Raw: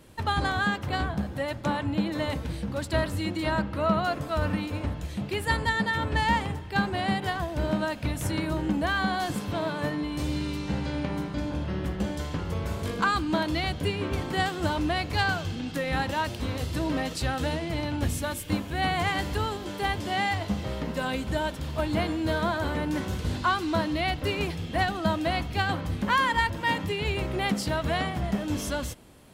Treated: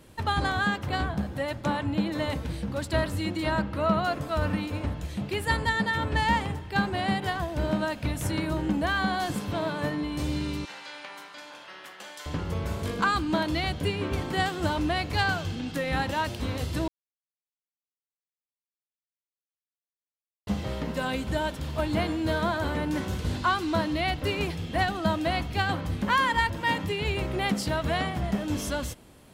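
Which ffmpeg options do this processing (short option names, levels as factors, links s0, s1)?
-filter_complex "[0:a]asettb=1/sr,asplit=3[s0][s1][s2];[s0]atrim=end=10.654[s3];[s1]atrim=start=10.65:end=12.26,asetpts=PTS-STARTPTS,afade=t=in:d=0.004:c=qsin,afade=t=out:st=1.606:d=0.004:c=qsin,highpass=1100[s4];[s2]atrim=start=12.256[s5];[s3][s4]acrossfade=d=0.004:c1=hsin:c2=qsin[s6];[s6][s5]acrossfade=d=0.004:c1=qsin:c2=hsin,asplit=3[s7][s8][s9];[s7]atrim=end=16.88,asetpts=PTS-STARTPTS,afade=t=out:st=16.876:d=0.004:c=hsin[s10];[s8]atrim=start=16.88:end=20.47,asetpts=PTS-STARTPTS,volume=0[s11];[s9]atrim=start=20.47,asetpts=PTS-STARTPTS,afade=t=in:d=0.004:c=hsin[s12];[s10][s11][s12]concat=n=3:v=0:a=1"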